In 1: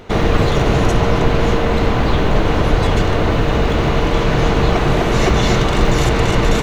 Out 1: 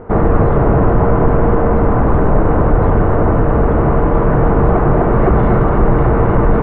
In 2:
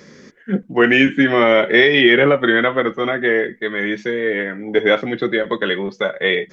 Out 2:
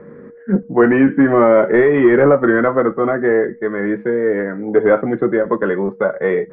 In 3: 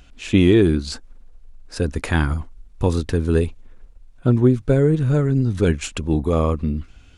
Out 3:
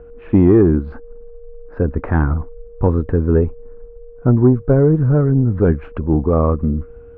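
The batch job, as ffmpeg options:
-af "aeval=exprs='val(0)+0.00708*sin(2*PI*470*n/s)':channel_layout=same,acontrast=43,lowpass=frequency=1400:width=0.5412,lowpass=frequency=1400:width=1.3066,volume=-1dB"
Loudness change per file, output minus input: +2.5, +1.0, +3.5 LU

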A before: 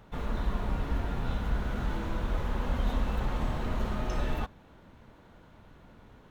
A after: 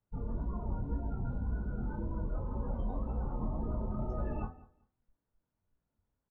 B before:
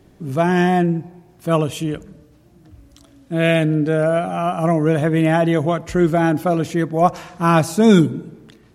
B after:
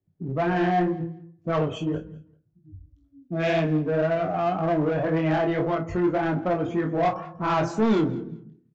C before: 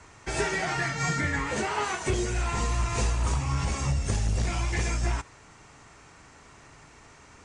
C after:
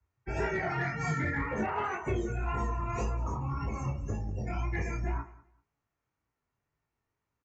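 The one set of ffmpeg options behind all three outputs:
-filter_complex "[0:a]afftdn=noise_reduction=32:noise_floor=-32,bandreject=frequency=83.52:width_type=h:width=4,bandreject=frequency=167.04:width_type=h:width=4,bandreject=frequency=250.56:width_type=h:width=4,bandreject=frequency=334.08:width_type=h:width=4,bandreject=frequency=417.6:width_type=h:width=4,bandreject=frequency=501.12:width_type=h:width=4,bandreject=frequency=584.64:width_type=h:width=4,bandreject=frequency=668.16:width_type=h:width=4,bandreject=frequency=751.68:width_type=h:width=4,bandreject=frequency=835.2:width_type=h:width=4,bandreject=frequency=918.72:width_type=h:width=4,bandreject=frequency=1002.24:width_type=h:width=4,bandreject=frequency=1085.76:width_type=h:width=4,bandreject=frequency=1169.28:width_type=h:width=4,bandreject=frequency=1252.8:width_type=h:width=4,bandreject=frequency=1336.32:width_type=h:width=4,bandreject=frequency=1419.84:width_type=h:width=4,bandreject=frequency=1503.36:width_type=h:width=4,bandreject=frequency=1586.88:width_type=h:width=4,bandreject=frequency=1670.4:width_type=h:width=4,bandreject=frequency=1753.92:width_type=h:width=4,bandreject=frequency=1837.44:width_type=h:width=4,bandreject=frequency=1920.96:width_type=h:width=4,bandreject=frequency=2004.48:width_type=h:width=4,bandreject=frequency=2088:width_type=h:width=4,bandreject=frequency=2171.52:width_type=h:width=4,bandreject=frequency=2255.04:width_type=h:width=4,flanger=delay=17.5:depth=6.1:speed=1.9,equalizer=frequency=98:width=0.83:gain=4.5,acrossover=split=230[link_01][link_02];[link_01]acompressor=threshold=-34dB:ratio=6[link_03];[link_02]asoftclip=type=tanh:threshold=-18.5dB[link_04];[link_03][link_04]amix=inputs=2:normalize=0,highshelf=frequency=3500:gain=-8.5,asplit=2[link_05][link_06];[link_06]volume=29dB,asoftclip=hard,volume=-29dB,volume=-10dB[link_07];[link_05][link_07]amix=inputs=2:normalize=0,asplit=2[link_08][link_09];[link_09]adelay=32,volume=-9.5dB[link_10];[link_08][link_10]amix=inputs=2:normalize=0,aecho=1:1:195|390:0.0891|0.0178,aresample=16000,aresample=44100,volume=-1dB"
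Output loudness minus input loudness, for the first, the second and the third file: −4.5, −7.0, −5.0 LU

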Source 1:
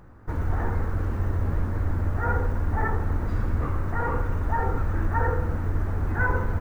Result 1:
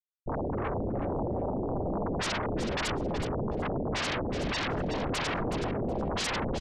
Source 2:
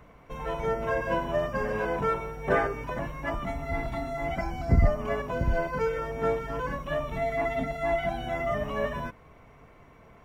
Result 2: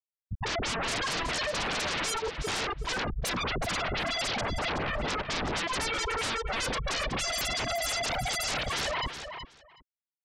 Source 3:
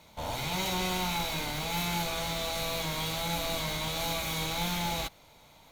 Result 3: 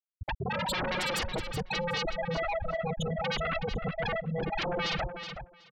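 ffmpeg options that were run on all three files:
-filter_complex "[0:a]afftfilt=real='re*gte(hypot(re,im),0.126)':imag='im*gte(hypot(re,im),0.126)':win_size=1024:overlap=0.75,highshelf=frequency=2200:gain=-3.5,asplit=2[link_01][link_02];[link_02]acompressor=threshold=-34dB:ratio=6,volume=0dB[link_03];[link_01][link_03]amix=inputs=2:normalize=0,alimiter=limit=-20.5dB:level=0:latency=1:release=342,aeval=exprs='0.0944*sin(PI/2*7.94*val(0)/0.0944)':channel_layout=same,aecho=1:1:372|744:0.355|0.0532,volume=-8dB"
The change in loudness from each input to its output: −4.0, −0.5, −1.0 LU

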